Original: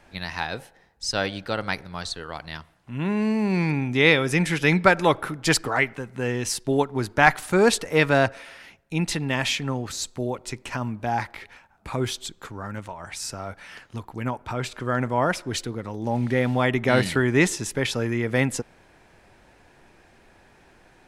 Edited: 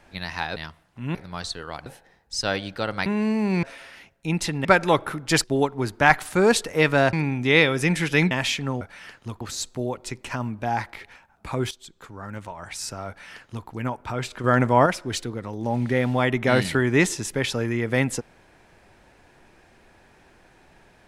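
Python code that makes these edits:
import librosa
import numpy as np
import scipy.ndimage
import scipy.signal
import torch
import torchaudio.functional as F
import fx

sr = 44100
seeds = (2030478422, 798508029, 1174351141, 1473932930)

y = fx.edit(x, sr, fx.swap(start_s=0.56, length_s=1.2, other_s=2.47, other_length_s=0.59),
    fx.swap(start_s=3.63, length_s=1.18, other_s=8.3, other_length_s=1.02),
    fx.cut(start_s=5.6, length_s=1.01),
    fx.fade_in_from(start_s=12.12, length_s=0.79, floor_db=-14.5),
    fx.duplicate(start_s=13.49, length_s=0.6, to_s=9.82),
    fx.clip_gain(start_s=14.85, length_s=0.42, db=5.5), tone=tone)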